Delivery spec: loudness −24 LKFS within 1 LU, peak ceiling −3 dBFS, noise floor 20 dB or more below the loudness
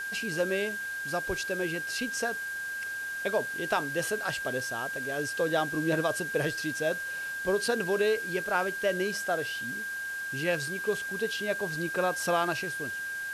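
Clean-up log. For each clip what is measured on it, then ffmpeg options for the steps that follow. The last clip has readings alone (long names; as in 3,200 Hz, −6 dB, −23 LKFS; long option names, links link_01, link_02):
interfering tone 1,600 Hz; level of the tone −33 dBFS; background noise floor −36 dBFS; target noise floor −51 dBFS; integrated loudness −30.5 LKFS; sample peak −13.5 dBFS; target loudness −24.0 LKFS
→ -af "bandreject=frequency=1600:width=30"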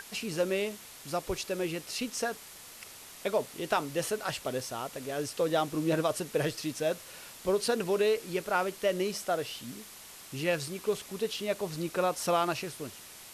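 interfering tone none found; background noise floor −49 dBFS; target noise floor −52 dBFS
→ -af "afftdn=noise_reduction=6:noise_floor=-49"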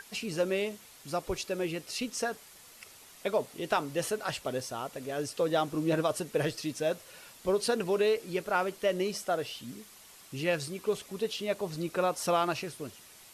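background noise floor −54 dBFS; integrated loudness −32.0 LKFS; sample peak −14.5 dBFS; target loudness −24.0 LKFS
→ -af "volume=8dB"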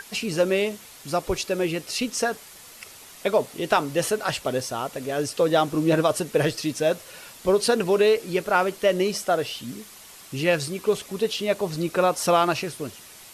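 integrated loudness −24.0 LKFS; sample peak −6.5 dBFS; background noise floor −46 dBFS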